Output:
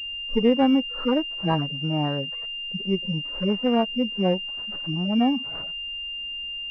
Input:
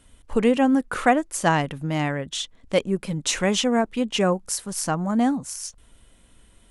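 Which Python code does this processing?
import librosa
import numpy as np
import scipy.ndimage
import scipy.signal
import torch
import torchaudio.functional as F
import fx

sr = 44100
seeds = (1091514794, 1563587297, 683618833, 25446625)

y = fx.hpss_only(x, sr, part='harmonic')
y = fx.pwm(y, sr, carrier_hz=2800.0)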